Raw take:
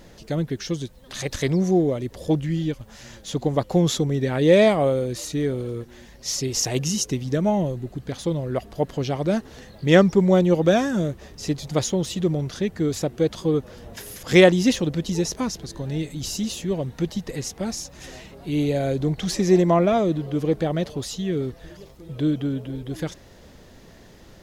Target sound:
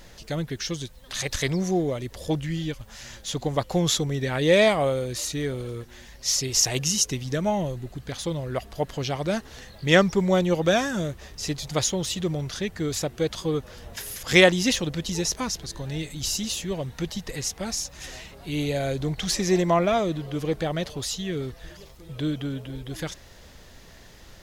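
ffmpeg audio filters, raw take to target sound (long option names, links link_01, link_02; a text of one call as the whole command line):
ffmpeg -i in.wav -af "equalizer=frequency=270:width_type=o:width=3:gain=-9.5,volume=3.5dB" out.wav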